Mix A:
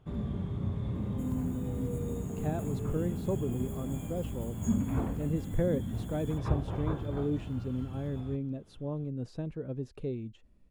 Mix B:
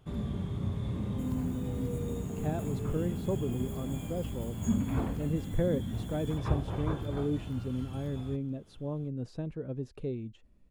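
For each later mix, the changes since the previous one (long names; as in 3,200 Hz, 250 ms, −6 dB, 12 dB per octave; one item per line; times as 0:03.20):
first sound: add high-shelf EQ 3,200 Hz +10.5 dB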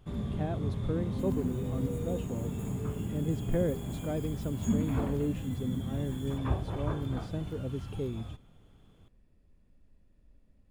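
speech: entry −2.05 s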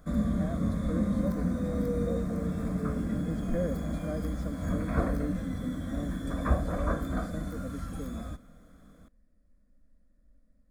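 first sound +10.0 dB
second sound −11.0 dB
master: add phaser with its sweep stopped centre 580 Hz, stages 8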